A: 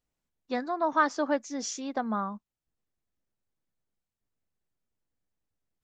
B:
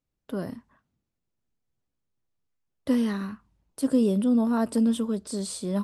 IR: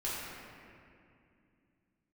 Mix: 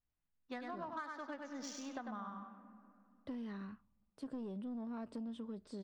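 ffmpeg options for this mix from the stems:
-filter_complex "[0:a]equalizer=f=430:w=0.62:g=-9.5,adynamicsmooth=sensitivity=4:basefreq=2500,volume=0.668,asplit=3[s0][s1][s2];[s1]volume=0.126[s3];[s2]volume=0.596[s4];[1:a]lowpass=3800,asoftclip=type=tanh:threshold=0.126,adelay=400,volume=0.224[s5];[2:a]atrim=start_sample=2205[s6];[s3][s6]afir=irnorm=-1:irlink=0[s7];[s4]aecho=0:1:98|196|294|392:1|0.31|0.0961|0.0298[s8];[s0][s5][s7][s8]amix=inputs=4:normalize=0,acompressor=threshold=0.00891:ratio=10"

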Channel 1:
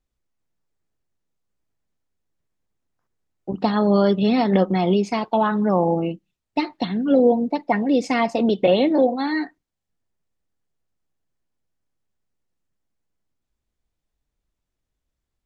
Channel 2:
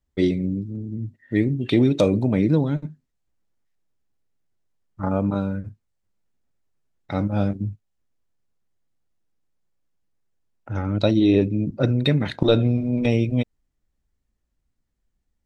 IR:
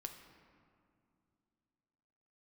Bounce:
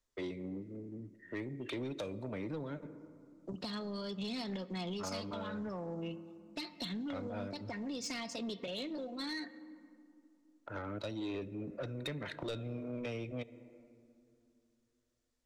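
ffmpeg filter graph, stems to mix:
-filter_complex "[0:a]acompressor=threshold=0.0708:ratio=4,equalizer=f=6100:t=o:w=2.2:g=13.5,volume=0.251,asplit=2[s0][s1];[s1]volume=0.562[s2];[1:a]acrossover=split=390 2200:gain=0.0891 1 0.178[s3][s4][s5];[s3][s4][s5]amix=inputs=3:normalize=0,volume=0.794,asplit=2[s6][s7];[s7]volume=0.398[s8];[2:a]atrim=start_sample=2205[s9];[s2][s8]amix=inputs=2:normalize=0[s10];[s10][s9]afir=irnorm=-1:irlink=0[s11];[s0][s6][s11]amix=inputs=3:normalize=0,bandreject=f=800:w=5.1,acrossover=split=170|3000[s12][s13][s14];[s13]acompressor=threshold=0.0126:ratio=6[s15];[s12][s15][s14]amix=inputs=3:normalize=0,asoftclip=type=tanh:threshold=0.0224"

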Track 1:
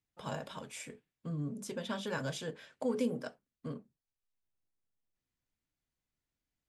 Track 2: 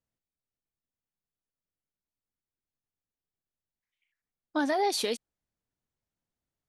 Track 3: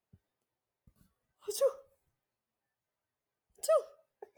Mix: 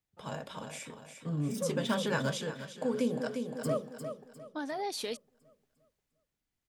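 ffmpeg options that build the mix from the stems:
-filter_complex "[0:a]volume=0.944,asplit=2[s0][s1];[s1]volume=0.355[s2];[1:a]volume=0.282[s3];[2:a]volume=0.224,asplit=2[s4][s5];[s5]volume=0.501[s6];[s2][s6]amix=inputs=2:normalize=0,aecho=0:1:352|704|1056|1408|1760|2112|2464:1|0.47|0.221|0.104|0.0488|0.0229|0.0108[s7];[s0][s3][s4][s7]amix=inputs=4:normalize=0,dynaudnorm=f=320:g=3:m=2.24,tremolo=f=0.54:d=0.48"

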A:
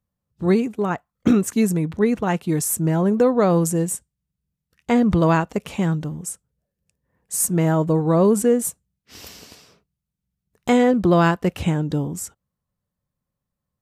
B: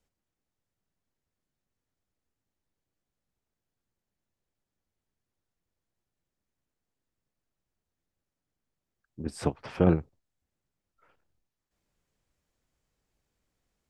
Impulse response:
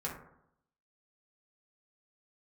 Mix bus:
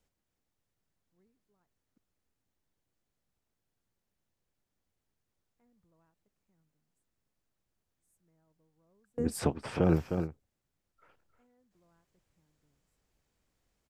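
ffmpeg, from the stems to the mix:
-filter_complex "[0:a]equalizer=f=3200:w=2.7:g=-13,adelay=700,volume=0.133,asplit=3[s0][s1][s2];[s0]atrim=end=1.98,asetpts=PTS-STARTPTS,afade=t=out:st=1.976:d=0.004:c=hsin[s3];[s1]atrim=start=1.98:end=4.95,asetpts=PTS-STARTPTS,volume=0[s4];[s2]atrim=start=4.95,asetpts=PTS-STARTPTS,afade=t=in:d=0.004:c=hsin[s5];[s3][s4][s5]concat=n=3:v=0:a=1[s6];[1:a]volume=1.12,asplit=3[s7][s8][s9];[s8]volume=0.266[s10];[s9]apad=whole_len=640288[s11];[s6][s11]sidechaingate=range=0.0141:threshold=0.00112:ratio=16:detection=peak[s12];[s10]aecho=0:1:308:1[s13];[s12][s7][s13]amix=inputs=3:normalize=0,alimiter=limit=0.2:level=0:latency=1:release=21"

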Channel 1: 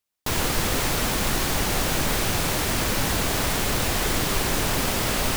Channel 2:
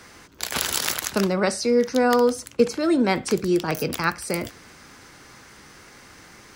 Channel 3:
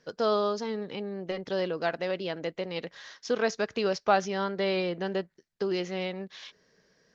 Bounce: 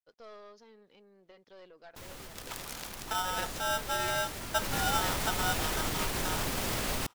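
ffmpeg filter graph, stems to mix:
-filter_complex "[0:a]alimiter=limit=0.0944:level=0:latency=1:release=169,adelay=1700,volume=0.794,afade=t=in:st=2.85:d=0.63:silence=0.473151,afade=t=in:st=4.53:d=0.22:silence=0.398107[s0];[1:a]equalizer=f=120:w=0.34:g=11,aeval=exprs='val(0)*sgn(sin(2*PI*1100*n/s))':c=same,adelay=1950,volume=0.112[s1];[2:a]lowshelf=f=270:g=-8,aeval=exprs='(tanh(14.1*val(0)+0.5)-tanh(0.5))/14.1':c=same,aeval=exprs='val(0)*gte(abs(val(0)),0.00112)':c=same,volume=0.112[s2];[s0][s1][s2]amix=inputs=3:normalize=0"

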